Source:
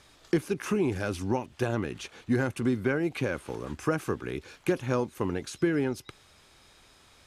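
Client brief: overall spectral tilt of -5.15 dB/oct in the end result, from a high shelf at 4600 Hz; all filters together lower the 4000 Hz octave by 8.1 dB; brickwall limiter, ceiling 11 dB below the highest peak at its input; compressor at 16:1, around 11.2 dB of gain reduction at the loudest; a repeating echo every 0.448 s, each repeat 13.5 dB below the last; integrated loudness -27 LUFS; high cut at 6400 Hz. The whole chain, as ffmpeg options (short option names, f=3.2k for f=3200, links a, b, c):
-af "lowpass=6.4k,equalizer=f=4k:t=o:g=-6.5,highshelf=f=4.6k:g=-8,acompressor=threshold=-32dB:ratio=16,alimiter=level_in=6.5dB:limit=-24dB:level=0:latency=1,volume=-6.5dB,aecho=1:1:448|896:0.211|0.0444,volume=15dB"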